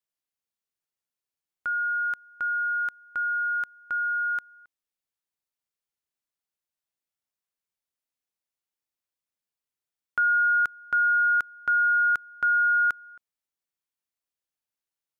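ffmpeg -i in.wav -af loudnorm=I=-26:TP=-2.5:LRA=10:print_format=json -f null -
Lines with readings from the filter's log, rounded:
"input_i" : "-24.0",
"input_tp" : "-18.4",
"input_lra" : "6.9",
"input_thresh" : "-34.6",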